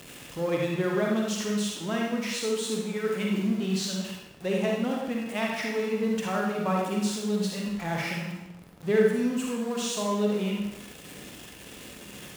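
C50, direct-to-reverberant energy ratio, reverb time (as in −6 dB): 0.0 dB, −1.5 dB, 0.95 s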